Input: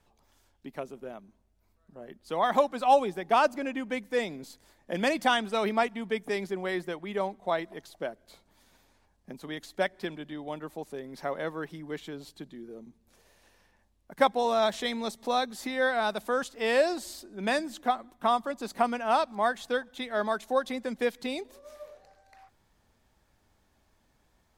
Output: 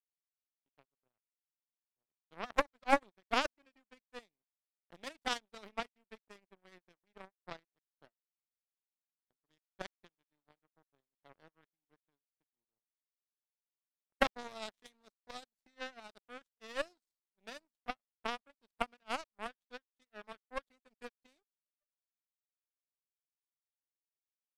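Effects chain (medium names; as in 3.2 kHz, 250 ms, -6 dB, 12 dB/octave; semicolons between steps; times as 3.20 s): partial rectifier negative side -3 dB; power-law waveshaper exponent 3; trim +2 dB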